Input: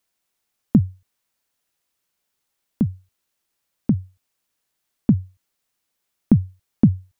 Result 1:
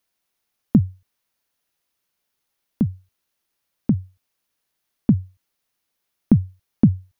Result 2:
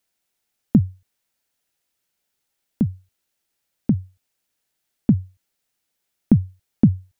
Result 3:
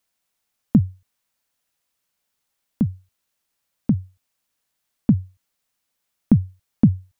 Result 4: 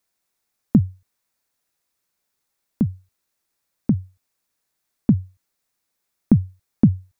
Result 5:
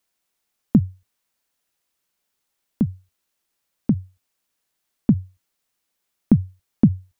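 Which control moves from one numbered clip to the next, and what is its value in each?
parametric band, centre frequency: 7,700, 1,100, 370, 3,000, 110 Hertz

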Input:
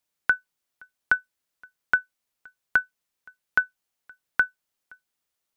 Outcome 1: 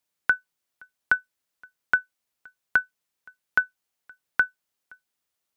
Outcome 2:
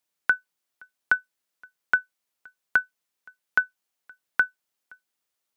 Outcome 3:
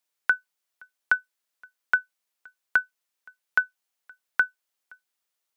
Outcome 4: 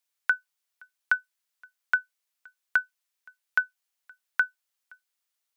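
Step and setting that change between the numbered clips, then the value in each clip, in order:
high-pass filter, corner frequency: 42, 170, 510, 1,300 Hertz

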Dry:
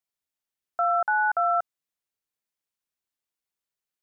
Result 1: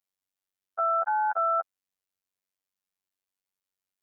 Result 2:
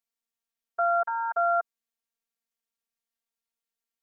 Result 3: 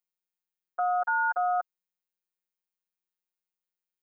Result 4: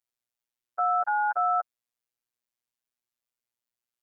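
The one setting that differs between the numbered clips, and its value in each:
phases set to zero, frequency: 95, 230, 180, 120 Hertz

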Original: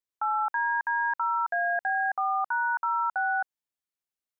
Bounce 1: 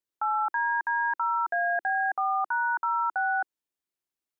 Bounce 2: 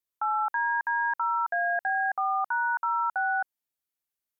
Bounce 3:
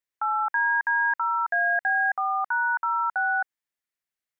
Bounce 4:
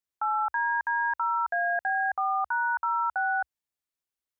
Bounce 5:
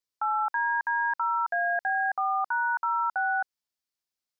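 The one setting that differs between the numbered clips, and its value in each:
parametric band, centre frequency: 340, 14,000, 1,900, 67, 4,900 Hertz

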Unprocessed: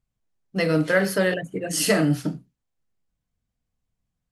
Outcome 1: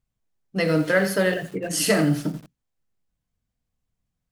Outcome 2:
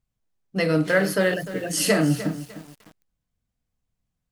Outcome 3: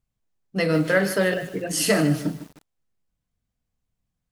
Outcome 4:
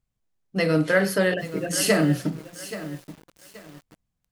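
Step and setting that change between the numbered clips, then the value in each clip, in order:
feedback echo at a low word length, delay time: 86, 301, 152, 828 milliseconds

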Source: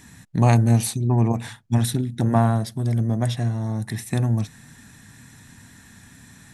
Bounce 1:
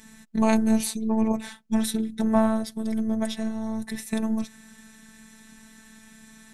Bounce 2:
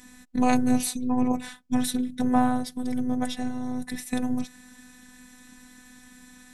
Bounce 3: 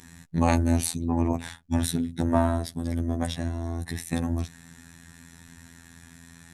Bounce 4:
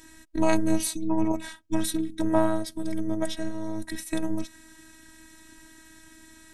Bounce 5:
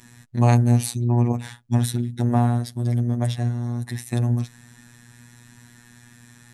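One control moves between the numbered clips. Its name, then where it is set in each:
phases set to zero, frequency: 220, 250, 84, 320, 120 Hertz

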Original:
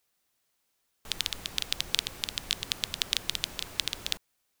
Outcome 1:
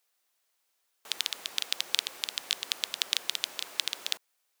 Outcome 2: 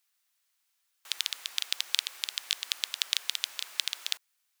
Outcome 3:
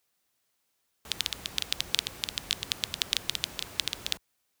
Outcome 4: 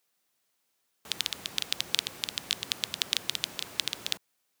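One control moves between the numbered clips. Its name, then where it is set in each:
high-pass filter, corner frequency: 460, 1,200, 43, 130 Hertz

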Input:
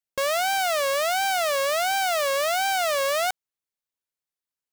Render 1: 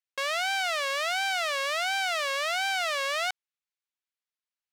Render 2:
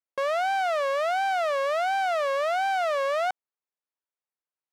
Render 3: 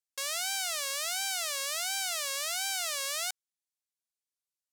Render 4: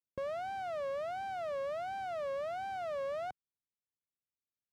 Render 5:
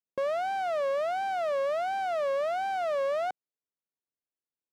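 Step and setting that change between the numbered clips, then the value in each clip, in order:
resonant band-pass, frequency: 2,500, 850, 7,600, 110, 310 Hertz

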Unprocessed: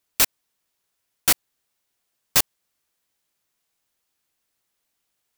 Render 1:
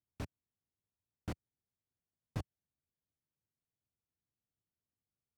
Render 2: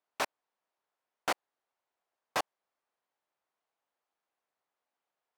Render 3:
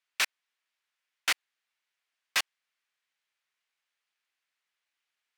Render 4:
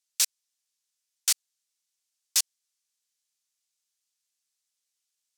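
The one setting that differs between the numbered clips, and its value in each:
resonant band-pass, frequency: 100, 780, 2,100, 6,400 Hertz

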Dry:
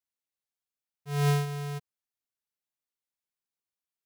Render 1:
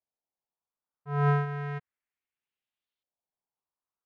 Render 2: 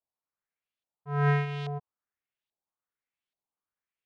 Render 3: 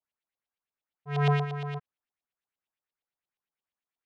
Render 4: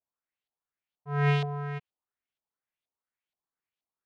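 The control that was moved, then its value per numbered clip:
auto-filter low-pass, speed: 0.33, 1.2, 8.6, 2.1 Hertz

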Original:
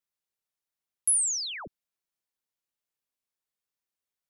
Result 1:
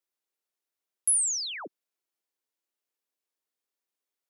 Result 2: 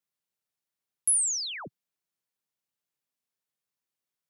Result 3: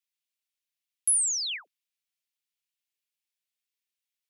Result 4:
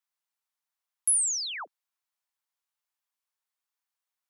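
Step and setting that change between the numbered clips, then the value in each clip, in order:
high-pass with resonance, frequency: 330, 130, 2,500, 920 Hertz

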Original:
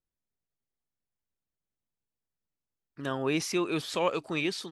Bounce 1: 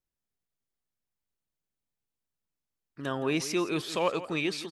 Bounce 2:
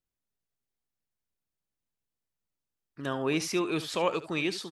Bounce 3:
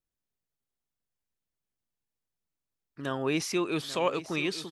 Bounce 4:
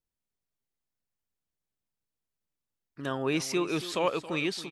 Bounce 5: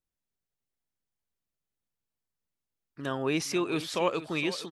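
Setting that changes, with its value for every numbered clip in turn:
single-tap delay, delay time: 169, 72, 840, 275, 465 milliseconds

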